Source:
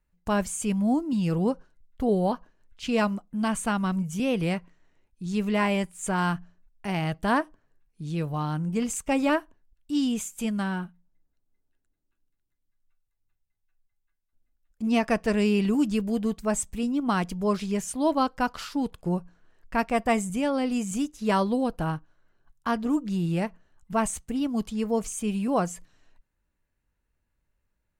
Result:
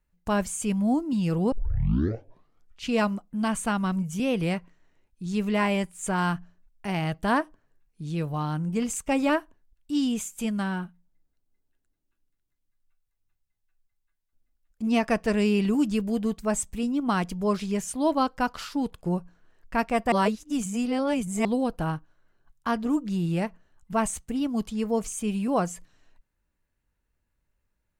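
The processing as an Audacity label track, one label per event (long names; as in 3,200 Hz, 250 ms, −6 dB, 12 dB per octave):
1.520000	1.520000	tape start 1.36 s
20.120000	21.450000	reverse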